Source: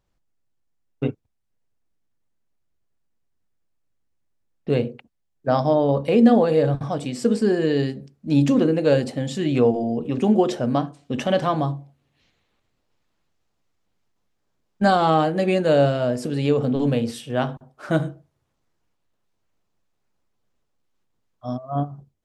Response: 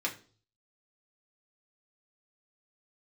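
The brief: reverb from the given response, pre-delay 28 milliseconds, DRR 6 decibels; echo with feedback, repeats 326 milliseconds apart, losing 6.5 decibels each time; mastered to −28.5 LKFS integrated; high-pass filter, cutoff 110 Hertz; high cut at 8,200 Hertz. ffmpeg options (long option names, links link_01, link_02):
-filter_complex "[0:a]highpass=110,lowpass=8200,aecho=1:1:326|652|978|1304|1630|1956:0.473|0.222|0.105|0.0491|0.0231|0.0109,asplit=2[link_01][link_02];[1:a]atrim=start_sample=2205,adelay=28[link_03];[link_02][link_03]afir=irnorm=-1:irlink=0,volume=-11.5dB[link_04];[link_01][link_04]amix=inputs=2:normalize=0,volume=-8dB"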